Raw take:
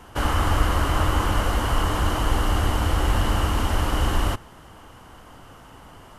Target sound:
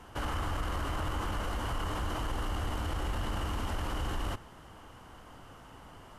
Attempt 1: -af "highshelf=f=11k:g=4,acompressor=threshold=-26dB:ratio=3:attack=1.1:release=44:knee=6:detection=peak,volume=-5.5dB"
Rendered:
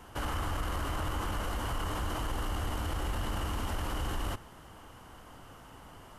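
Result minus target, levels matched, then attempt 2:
8000 Hz band +2.5 dB
-af "highshelf=f=11k:g=-5.5,acompressor=threshold=-26dB:ratio=3:attack=1.1:release=44:knee=6:detection=peak,volume=-5.5dB"

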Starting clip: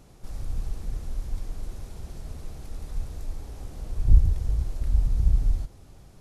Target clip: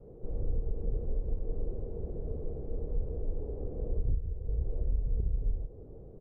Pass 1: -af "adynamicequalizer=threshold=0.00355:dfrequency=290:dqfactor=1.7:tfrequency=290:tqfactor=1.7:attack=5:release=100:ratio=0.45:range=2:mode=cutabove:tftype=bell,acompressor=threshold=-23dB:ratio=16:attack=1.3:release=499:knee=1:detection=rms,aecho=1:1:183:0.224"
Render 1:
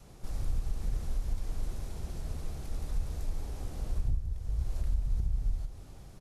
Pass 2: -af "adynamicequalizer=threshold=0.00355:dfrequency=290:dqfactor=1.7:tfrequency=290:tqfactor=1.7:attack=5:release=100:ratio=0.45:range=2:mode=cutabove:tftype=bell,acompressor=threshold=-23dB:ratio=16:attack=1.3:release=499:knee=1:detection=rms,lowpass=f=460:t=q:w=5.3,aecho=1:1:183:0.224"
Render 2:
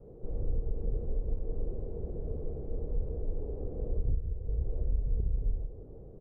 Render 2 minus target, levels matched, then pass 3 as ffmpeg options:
echo-to-direct +6.5 dB
-af "adynamicequalizer=threshold=0.00355:dfrequency=290:dqfactor=1.7:tfrequency=290:tqfactor=1.7:attack=5:release=100:ratio=0.45:range=2:mode=cutabove:tftype=bell,acompressor=threshold=-23dB:ratio=16:attack=1.3:release=499:knee=1:detection=rms,lowpass=f=460:t=q:w=5.3,aecho=1:1:183:0.106"

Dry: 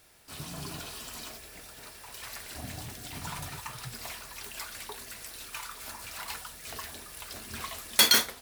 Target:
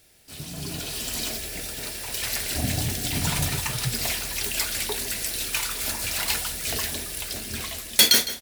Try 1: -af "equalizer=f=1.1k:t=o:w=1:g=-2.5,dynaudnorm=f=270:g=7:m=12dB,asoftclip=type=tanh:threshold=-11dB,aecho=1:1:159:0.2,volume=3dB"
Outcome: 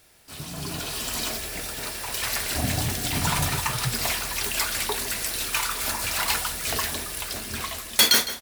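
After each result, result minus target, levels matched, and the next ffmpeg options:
1000 Hz band +6.5 dB; soft clip: distortion +9 dB
-af "equalizer=f=1.1k:t=o:w=1:g=-11.5,dynaudnorm=f=270:g=7:m=12dB,asoftclip=type=tanh:threshold=-11dB,aecho=1:1:159:0.2,volume=3dB"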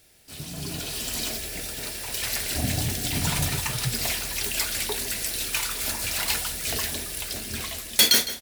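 soft clip: distortion +9 dB
-af "equalizer=f=1.1k:t=o:w=1:g=-11.5,dynaudnorm=f=270:g=7:m=12dB,asoftclip=type=tanh:threshold=-4.5dB,aecho=1:1:159:0.2,volume=3dB"

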